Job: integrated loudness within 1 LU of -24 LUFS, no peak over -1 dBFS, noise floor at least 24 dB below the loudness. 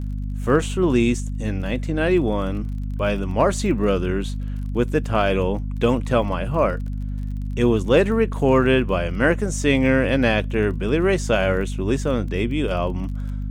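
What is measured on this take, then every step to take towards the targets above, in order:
ticks 30/s; hum 50 Hz; harmonics up to 250 Hz; hum level -24 dBFS; loudness -21.5 LUFS; peak -5.5 dBFS; loudness target -24.0 LUFS
-> de-click; notches 50/100/150/200/250 Hz; gain -2.5 dB

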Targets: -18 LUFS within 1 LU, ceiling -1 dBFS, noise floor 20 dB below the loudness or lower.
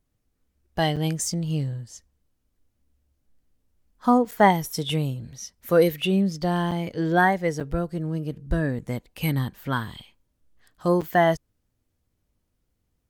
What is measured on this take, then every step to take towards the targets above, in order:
dropouts 6; longest dropout 6.6 ms; loudness -24.5 LUFS; peak -5.0 dBFS; loudness target -18.0 LUFS
-> interpolate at 0.96/4.31/6.71/7.6/8.79/11.01, 6.6 ms; gain +6.5 dB; limiter -1 dBFS

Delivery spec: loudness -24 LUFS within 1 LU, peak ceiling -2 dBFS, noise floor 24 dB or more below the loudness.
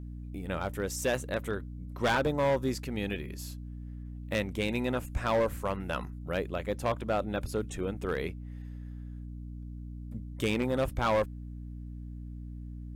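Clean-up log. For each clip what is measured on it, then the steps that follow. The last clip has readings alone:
clipped 1.4%; flat tops at -22.0 dBFS; hum 60 Hz; harmonics up to 300 Hz; hum level -39 dBFS; loudness -32.0 LUFS; peak -22.0 dBFS; loudness target -24.0 LUFS
-> clip repair -22 dBFS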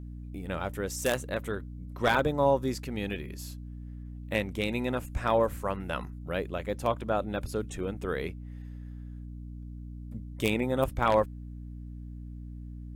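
clipped 0.0%; hum 60 Hz; harmonics up to 300 Hz; hum level -39 dBFS
-> notches 60/120/180/240/300 Hz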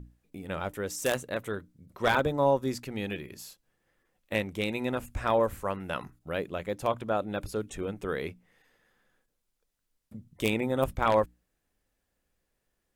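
hum none; loudness -30.5 LUFS; peak -12.0 dBFS; loudness target -24.0 LUFS
-> gain +6.5 dB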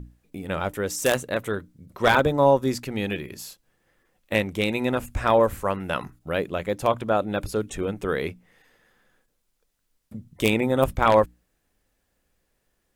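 loudness -24.0 LUFS; peak -5.5 dBFS; noise floor -74 dBFS

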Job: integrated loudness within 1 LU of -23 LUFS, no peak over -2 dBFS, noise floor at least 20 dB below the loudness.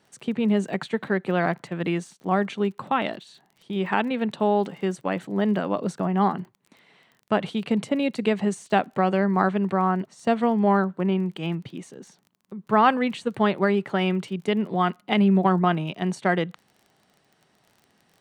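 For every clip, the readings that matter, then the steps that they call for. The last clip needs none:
ticks 27/s; loudness -24.5 LUFS; peak -5.0 dBFS; loudness target -23.0 LUFS
-> de-click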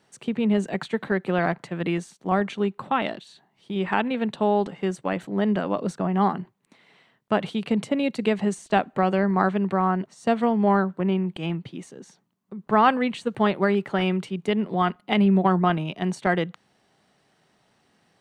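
ticks 0.11/s; loudness -24.5 LUFS; peak -5.0 dBFS; loudness target -23.0 LUFS
-> gain +1.5 dB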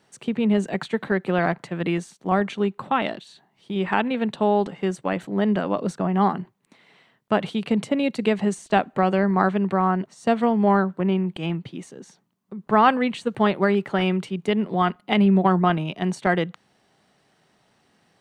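loudness -23.0 LUFS; peak -3.5 dBFS; noise floor -65 dBFS

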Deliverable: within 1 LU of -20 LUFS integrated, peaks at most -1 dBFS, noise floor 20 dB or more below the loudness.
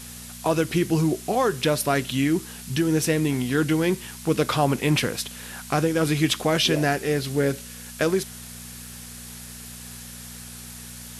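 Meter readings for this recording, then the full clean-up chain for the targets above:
hum 60 Hz; harmonics up to 240 Hz; hum level -42 dBFS; noise floor -40 dBFS; noise floor target -44 dBFS; loudness -23.5 LUFS; peak -8.0 dBFS; loudness target -20.0 LUFS
-> de-hum 60 Hz, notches 4; denoiser 6 dB, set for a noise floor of -40 dBFS; gain +3.5 dB

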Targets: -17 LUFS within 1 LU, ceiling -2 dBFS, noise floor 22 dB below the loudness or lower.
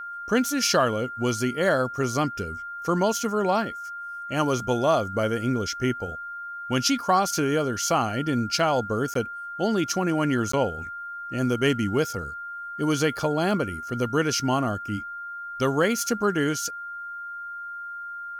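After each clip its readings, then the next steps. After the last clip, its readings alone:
dropouts 2; longest dropout 14 ms; steady tone 1400 Hz; tone level -33 dBFS; loudness -25.5 LUFS; peak -9.0 dBFS; loudness target -17.0 LUFS
-> interpolate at 9.14/10.52, 14 ms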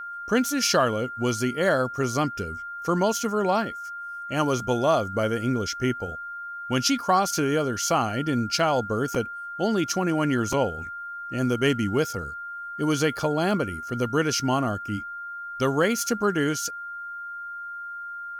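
dropouts 0; steady tone 1400 Hz; tone level -33 dBFS
-> notch 1400 Hz, Q 30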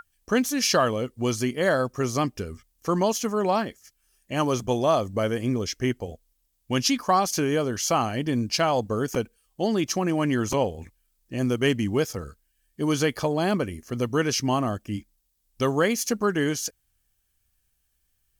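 steady tone none; loudness -25.5 LUFS; peak -9.0 dBFS; loudness target -17.0 LUFS
-> gain +8.5 dB; limiter -2 dBFS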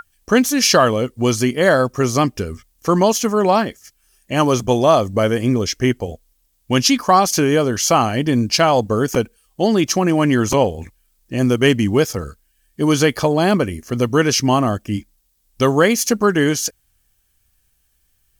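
loudness -17.0 LUFS; peak -2.0 dBFS; noise floor -64 dBFS

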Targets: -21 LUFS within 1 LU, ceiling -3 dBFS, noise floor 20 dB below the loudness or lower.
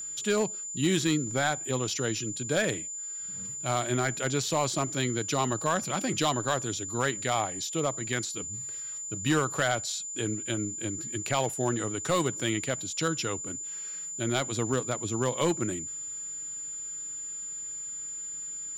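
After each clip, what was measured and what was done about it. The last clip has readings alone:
clipped 0.4%; flat tops at -18.0 dBFS; steady tone 7100 Hz; tone level -35 dBFS; loudness -30.0 LUFS; peak -18.0 dBFS; loudness target -21.0 LUFS
-> clip repair -18 dBFS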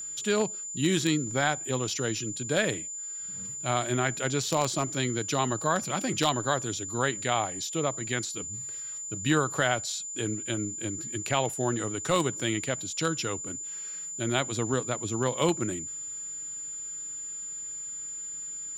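clipped 0.0%; steady tone 7100 Hz; tone level -35 dBFS
-> notch 7100 Hz, Q 30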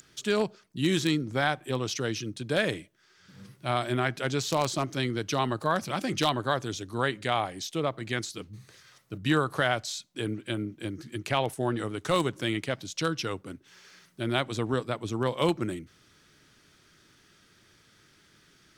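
steady tone none; loudness -29.5 LUFS; peak -8.5 dBFS; loudness target -21.0 LUFS
-> gain +8.5 dB; limiter -3 dBFS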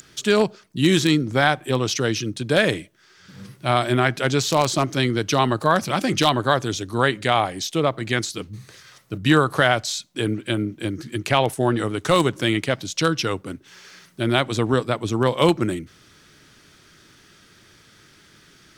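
loudness -21.5 LUFS; peak -3.0 dBFS; noise floor -54 dBFS

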